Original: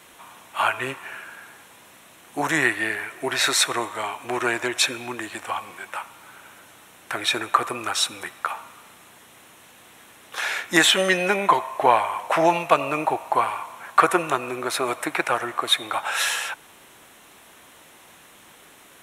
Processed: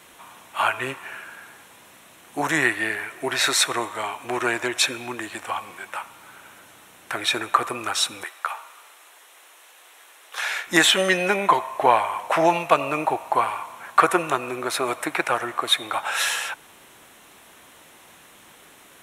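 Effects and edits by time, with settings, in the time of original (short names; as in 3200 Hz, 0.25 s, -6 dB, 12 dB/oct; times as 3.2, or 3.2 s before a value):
8.24–10.67 Bessel high-pass 590 Hz, order 8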